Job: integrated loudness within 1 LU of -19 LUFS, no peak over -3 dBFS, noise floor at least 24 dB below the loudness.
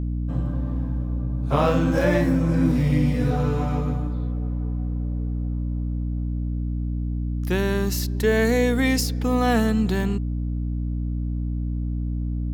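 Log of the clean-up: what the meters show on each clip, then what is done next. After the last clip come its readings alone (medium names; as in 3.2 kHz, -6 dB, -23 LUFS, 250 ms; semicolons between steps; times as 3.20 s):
hum 60 Hz; highest harmonic 300 Hz; hum level -23 dBFS; loudness -24.0 LUFS; peak level -6.5 dBFS; loudness target -19.0 LUFS
-> hum notches 60/120/180/240/300 Hz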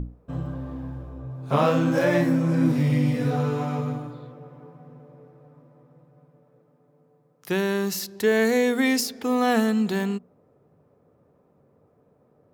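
hum not found; loudness -23.5 LUFS; peak level -8.0 dBFS; loudness target -19.0 LUFS
-> trim +4.5 dB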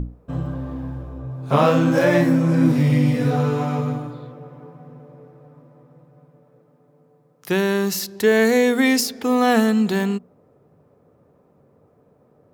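loudness -19.0 LUFS; peak level -3.5 dBFS; noise floor -58 dBFS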